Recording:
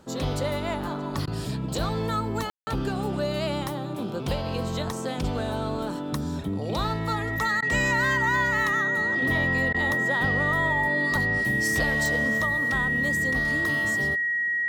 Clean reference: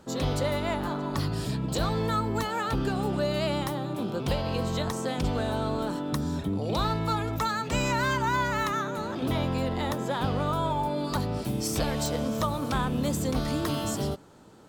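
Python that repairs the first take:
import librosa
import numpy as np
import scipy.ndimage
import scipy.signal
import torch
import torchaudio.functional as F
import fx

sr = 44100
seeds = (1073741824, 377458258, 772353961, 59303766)

y = fx.notch(x, sr, hz=1900.0, q=30.0)
y = fx.fix_ambience(y, sr, seeds[0], print_start_s=0.0, print_end_s=0.5, start_s=2.5, end_s=2.67)
y = fx.fix_interpolate(y, sr, at_s=(1.26, 7.61, 9.73), length_ms=12.0)
y = fx.gain(y, sr, db=fx.steps((0.0, 0.0), (12.38, 3.0)))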